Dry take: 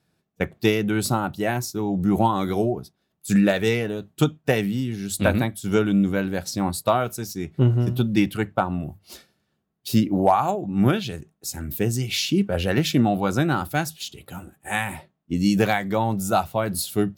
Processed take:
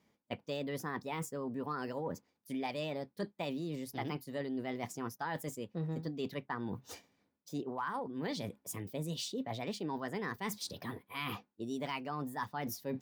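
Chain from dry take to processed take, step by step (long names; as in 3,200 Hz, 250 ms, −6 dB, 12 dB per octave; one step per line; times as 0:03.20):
bass and treble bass −2 dB, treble −7 dB
reversed playback
downward compressor 6 to 1, threshold −35 dBFS, peak gain reduction 21 dB
reversed playback
change of speed 1.32×
level −1.5 dB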